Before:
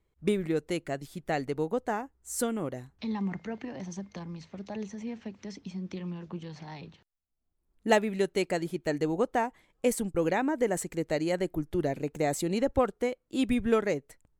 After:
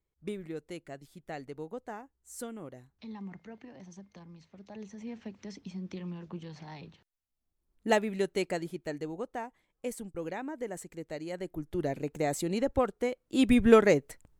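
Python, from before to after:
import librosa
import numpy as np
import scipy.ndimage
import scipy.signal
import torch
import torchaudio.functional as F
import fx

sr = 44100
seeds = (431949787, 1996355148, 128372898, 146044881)

y = fx.gain(x, sr, db=fx.line((4.57, -10.5), (5.19, -2.5), (8.47, -2.5), (9.19, -10.0), (11.26, -10.0), (11.9, -2.0), (13.0, -2.0), (13.67, 6.0)))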